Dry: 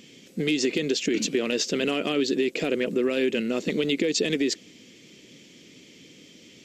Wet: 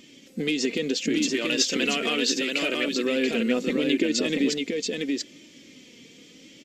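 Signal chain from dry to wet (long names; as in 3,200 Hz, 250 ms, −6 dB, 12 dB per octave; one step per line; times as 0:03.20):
0:01.34–0:03.06: tilt shelving filter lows −5.5 dB, about 800 Hz
single-tap delay 682 ms −3.5 dB
flanger 0.74 Hz, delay 3.2 ms, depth 1.2 ms, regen +40%
level +3 dB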